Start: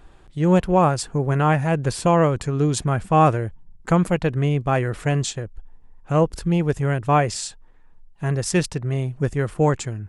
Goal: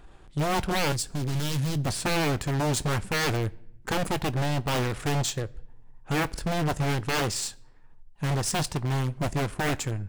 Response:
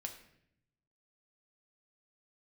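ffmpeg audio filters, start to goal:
-filter_complex "[0:a]aeval=exprs='0.112*(abs(mod(val(0)/0.112+3,4)-2)-1)':c=same,aeval=exprs='0.112*(cos(1*acos(clip(val(0)/0.112,-1,1)))-cos(1*PI/2))+0.0158*(cos(4*acos(clip(val(0)/0.112,-1,1)))-cos(4*PI/2))+0.0178*(cos(6*acos(clip(val(0)/0.112,-1,1)))-cos(6*PI/2))':c=same,asplit=2[s0][s1];[1:a]atrim=start_sample=2205,adelay=20[s2];[s1][s2]afir=irnorm=-1:irlink=0,volume=0.211[s3];[s0][s3]amix=inputs=2:normalize=0,asettb=1/sr,asplit=3[s4][s5][s6];[s4]atrim=end=0.924[s7];[s5]atrim=start=0.92:end=1.85,asetpts=PTS-STARTPTS,afade=t=in:d=0.004:c=qsin,afade=t=out:st=0.926:d=0.004:c=qsin,acrossover=split=320|3000[s8][s9][s10];[s9]acompressor=threshold=0.00282:ratio=2[s11];[s8][s11][s10]amix=inputs=3:normalize=0[s12];[s6]atrim=start=1.846[s13];[s7][s12]acrossfade=d=0.004:c1=hsin:c2=qsin[s14];[s14][s13]acrossfade=d=0.004:c1=qsin:c2=hsin,volume=0.841"

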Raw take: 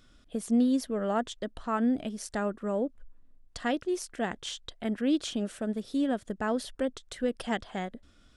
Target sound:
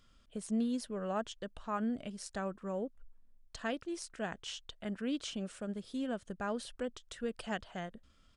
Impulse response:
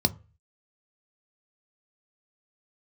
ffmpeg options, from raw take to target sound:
-af "equalizer=f=330:w=1.1:g=-4.5,asetrate=41625,aresample=44100,atempo=1.05946,volume=0.531"

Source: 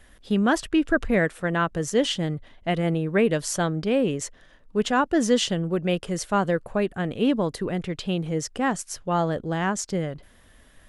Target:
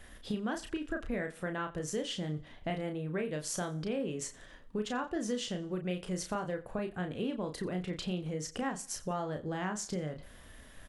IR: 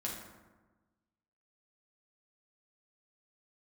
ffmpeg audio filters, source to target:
-filter_complex "[0:a]acompressor=threshold=0.0178:ratio=5,asplit=2[s0][s1];[s1]adelay=33,volume=0.531[s2];[s0][s2]amix=inputs=2:normalize=0,asplit=2[s3][s4];[s4]aecho=0:1:88|176|264:0.1|0.033|0.0109[s5];[s3][s5]amix=inputs=2:normalize=0"

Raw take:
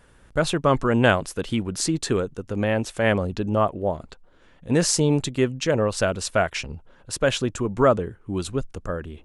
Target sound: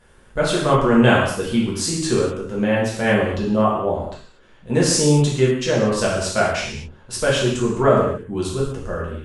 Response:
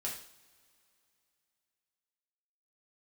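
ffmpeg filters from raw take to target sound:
-filter_complex "[1:a]atrim=start_sample=2205,afade=t=out:st=0.2:d=0.01,atrim=end_sample=9261,asetrate=26019,aresample=44100[s0];[0:a][s0]afir=irnorm=-1:irlink=0,volume=0.891"

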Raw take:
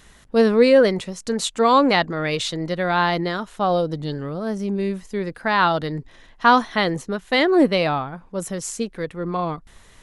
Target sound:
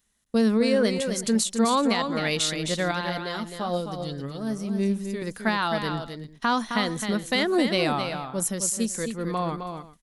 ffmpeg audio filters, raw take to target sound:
-filter_complex "[0:a]aemphasis=mode=production:type=75kf,agate=range=0.0708:threshold=0.0112:ratio=16:detection=peak,equalizer=f=220:w=4.7:g=9.5,alimiter=limit=0.335:level=0:latency=1:release=275,asettb=1/sr,asplit=3[s0][s1][s2];[s0]atrim=end=2.914[s3];[s1]atrim=start=2.91:end=5.22,asetpts=PTS-STARTPTS,afade=t=in:d=0.004:c=qsin,afade=t=out:st=2.306:d=0.004:c=qsin,flanger=delay=4.9:depth=3.1:regen=50:speed=1:shape=sinusoidal[s4];[s2]atrim=start=5.216[s5];[s3][s4]acrossfade=d=0.004:c1=hsin:c2=qsin[s6];[s6][s5]acrossfade=d=0.004:c1=qsin:c2=hsin,aecho=1:1:263|379:0.447|0.106,volume=0.596"

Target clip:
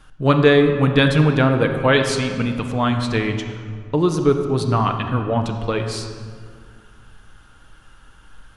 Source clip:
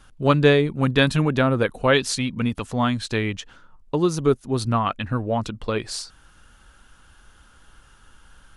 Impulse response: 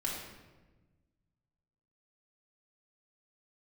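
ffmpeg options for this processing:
-filter_complex "[0:a]asplit=2[s0][s1];[1:a]atrim=start_sample=2205,asetrate=23373,aresample=44100,lowpass=5300[s2];[s1][s2]afir=irnorm=-1:irlink=0,volume=0.355[s3];[s0][s3]amix=inputs=2:normalize=0,volume=0.891"

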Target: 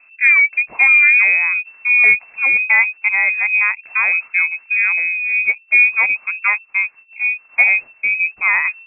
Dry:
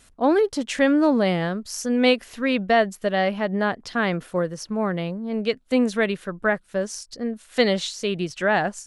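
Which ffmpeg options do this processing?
-af "lowshelf=f=320:g=6,lowpass=f=2300:t=q:w=0.5098,lowpass=f=2300:t=q:w=0.6013,lowpass=f=2300:t=q:w=0.9,lowpass=f=2300:t=q:w=2.563,afreqshift=-2700,crystalizer=i=10:c=0,volume=0.473"

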